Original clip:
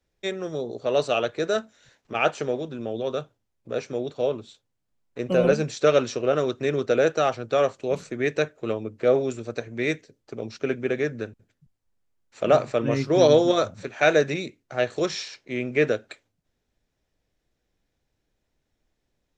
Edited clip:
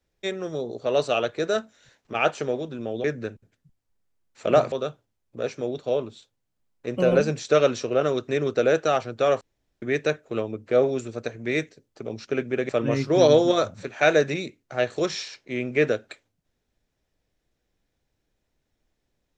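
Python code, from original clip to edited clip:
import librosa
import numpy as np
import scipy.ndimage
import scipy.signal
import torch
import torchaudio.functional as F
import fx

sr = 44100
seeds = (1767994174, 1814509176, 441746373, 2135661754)

y = fx.edit(x, sr, fx.room_tone_fill(start_s=7.73, length_s=0.41),
    fx.move(start_s=11.01, length_s=1.68, to_s=3.04), tone=tone)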